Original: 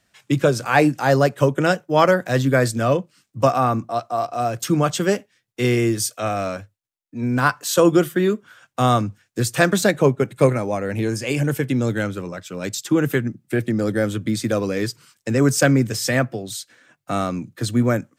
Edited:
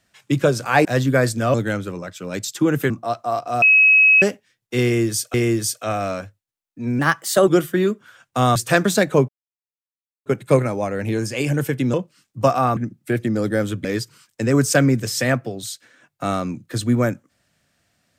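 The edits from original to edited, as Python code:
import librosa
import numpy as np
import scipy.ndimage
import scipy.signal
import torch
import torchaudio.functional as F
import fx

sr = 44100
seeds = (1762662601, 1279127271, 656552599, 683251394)

y = fx.edit(x, sr, fx.cut(start_s=0.85, length_s=1.39),
    fx.swap(start_s=2.93, length_s=0.83, other_s=11.84, other_length_s=1.36),
    fx.bleep(start_s=4.48, length_s=0.6, hz=2560.0, db=-9.0),
    fx.repeat(start_s=5.7, length_s=0.5, count=2),
    fx.speed_span(start_s=7.35, length_s=0.55, speed=1.13),
    fx.cut(start_s=8.98, length_s=0.45),
    fx.insert_silence(at_s=10.16, length_s=0.97),
    fx.cut(start_s=14.28, length_s=0.44), tone=tone)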